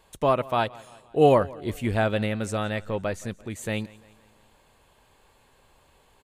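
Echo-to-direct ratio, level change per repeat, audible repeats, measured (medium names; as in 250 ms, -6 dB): -20.5 dB, -6.0 dB, 3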